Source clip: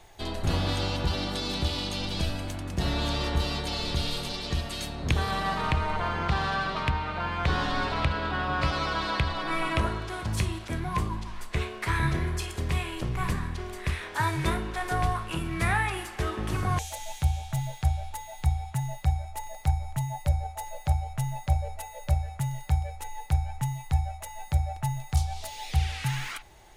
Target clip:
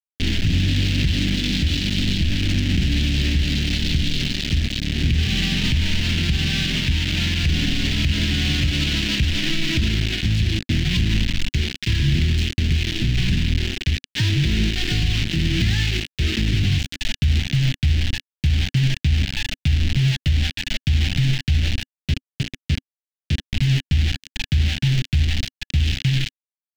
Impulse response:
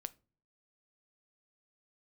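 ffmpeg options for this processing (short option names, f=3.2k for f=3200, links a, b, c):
-filter_complex "[0:a]asplit=2[a][b];[b]asoftclip=type=tanh:threshold=-30dB,volume=-4dB[c];[a][c]amix=inputs=2:normalize=0,asplit=3[d][e][f];[d]afade=t=out:st=21.88:d=0.02[g];[e]acompressor=threshold=-36dB:ratio=3,afade=t=in:st=21.88:d=0.02,afade=t=out:st=23.52:d=0.02[h];[f]afade=t=in:st=23.52:d=0.02[i];[g][h][i]amix=inputs=3:normalize=0,tiltshelf=f=1.3k:g=8.5,acrusher=bits=3:mix=0:aa=0.000001,firequalizer=gain_entry='entry(260,0);entry(470,-18);entry(1100,-26);entry(1700,-4);entry(2900,7);entry(10000,-16)':delay=0.05:min_phase=1,alimiter=limit=-14.5dB:level=0:latency=1:release=60,volume=3.5dB"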